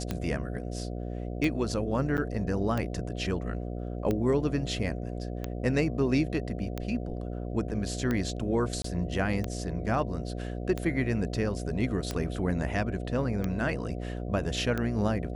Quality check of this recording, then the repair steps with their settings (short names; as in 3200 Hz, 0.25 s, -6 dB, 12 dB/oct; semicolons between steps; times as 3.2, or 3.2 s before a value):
buzz 60 Hz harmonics 12 -35 dBFS
tick 45 rpm -17 dBFS
2.17–2.18 gap 8.9 ms
8.82–8.84 gap 24 ms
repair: de-click; de-hum 60 Hz, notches 12; interpolate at 2.17, 8.9 ms; interpolate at 8.82, 24 ms